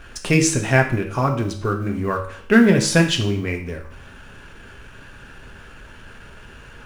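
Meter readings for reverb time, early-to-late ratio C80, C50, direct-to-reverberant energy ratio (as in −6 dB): 0.60 s, 12.5 dB, 9.0 dB, 3.0 dB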